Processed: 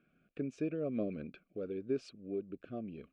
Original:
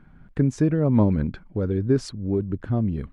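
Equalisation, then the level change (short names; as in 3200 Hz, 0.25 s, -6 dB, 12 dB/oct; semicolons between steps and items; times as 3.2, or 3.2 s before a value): vowel filter a; Butterworth band-stop 890 Hz, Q 0.71; bell 100 Hz -8 dB 0.78 oct; +7.5 dB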